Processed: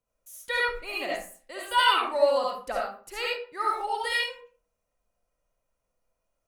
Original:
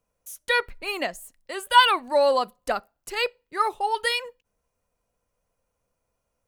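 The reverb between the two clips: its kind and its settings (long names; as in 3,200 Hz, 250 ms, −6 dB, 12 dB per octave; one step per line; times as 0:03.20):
comb and all-pass reverb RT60 0.42 s, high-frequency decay 0.7×, pre-delay 30 ms, DRR −4 dB
level −8.5 dB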